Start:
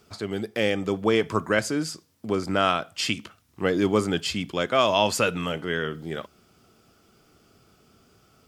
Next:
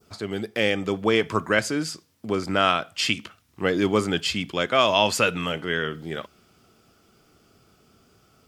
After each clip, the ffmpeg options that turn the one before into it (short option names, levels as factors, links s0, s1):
-af "adynamicequalizer=threshold=0.0112:dfrequency=2500:dqfactor=0.7:tfrequency=2500:tqfactor=0.7:attack=5:release=100:ratio=0.375:range=2:mode=boostabove:tftype=bell"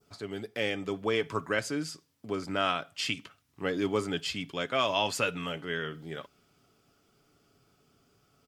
-af "aecho=1:1:7.1:0.33,volume=0.376"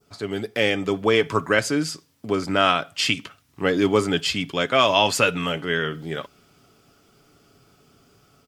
-af "dynaudnorm=f=120:g=3:m=1.88,volume=1.68"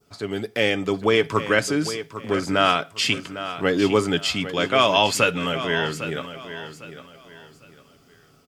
-af "aecho=1:1:803|1606|2409:0.251|0.0728|0.0211"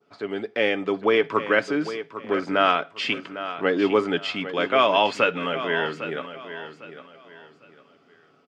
-af "highpass=250,lowpass=2700"